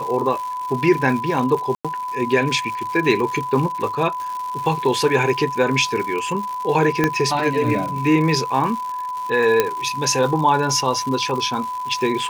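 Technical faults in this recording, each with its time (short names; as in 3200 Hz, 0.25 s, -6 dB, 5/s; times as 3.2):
crackle 220/s -27 dBFS
tone 1000 Hz -24 dBFS
1.75–1.85 gap 96 ms
7.04 pop -4 dBFS
9.6 pop -2 dBFS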